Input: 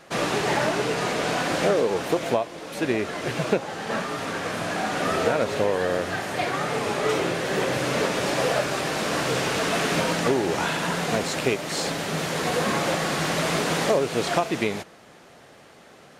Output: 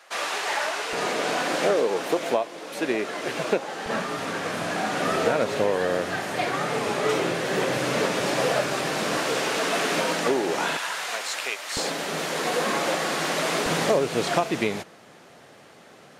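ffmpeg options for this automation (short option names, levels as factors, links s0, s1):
-af "asetnsamples=n=441:p=0,asendcmd='0.93 highpass f 260;3.86 highpass f 120;9.17 highpass f 260;10.77 highpass f 1000;11.77 highpass f 260;13.66 highpass f 90',highpass=790"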